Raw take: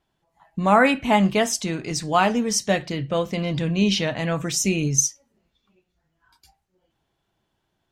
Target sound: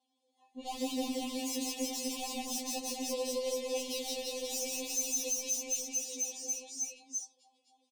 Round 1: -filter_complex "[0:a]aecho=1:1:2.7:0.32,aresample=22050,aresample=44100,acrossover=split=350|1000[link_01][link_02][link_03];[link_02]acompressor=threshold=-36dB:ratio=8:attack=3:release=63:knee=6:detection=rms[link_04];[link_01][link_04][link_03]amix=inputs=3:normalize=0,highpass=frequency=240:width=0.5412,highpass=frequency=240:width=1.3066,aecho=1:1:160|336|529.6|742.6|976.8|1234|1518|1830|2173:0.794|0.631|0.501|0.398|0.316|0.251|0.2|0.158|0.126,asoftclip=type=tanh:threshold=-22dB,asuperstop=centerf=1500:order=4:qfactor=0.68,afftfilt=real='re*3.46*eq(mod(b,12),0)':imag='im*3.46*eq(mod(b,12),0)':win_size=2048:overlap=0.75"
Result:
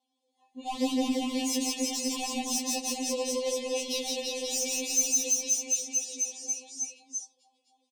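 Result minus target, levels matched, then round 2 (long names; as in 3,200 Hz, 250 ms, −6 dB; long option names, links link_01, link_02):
downward compressor: peak gain reduction +7 dB; soft clipping: distortion −5 dB
-filter_complex "[0:a]aecho=1:1:2.7:0.32,aresample=22050,aresample=44100,acrossover=split=350|1000[link_01][link_02][link_03];[link_02]acompressor=threshold=-28dB:ratio=8:attack=3:release=63:knee=6:detection=rms[link_04];[link_01][link_04][link_03]amix=inputs=3:normalize=0,highpass=frequency=240:width=0.5412,highpass=frequency=240:width=1.3066,aecho=1:1:160|336|529.6|742.6|976.8|1234|1518|1830|2173:0.794|0.631|0.501|0.398|0.316|0.251|0.2|0.158|0.126,asoftclip=type=tanh:threshold=-31dB,asuperstop=centerf=1500:order=4:qfactor=0.68,afftfilt=real='re*3.46*eq(mod(b,12),0)':imag='im*3.46*eq(mod(b,12),0)':win_size=2048:overlap=0.75"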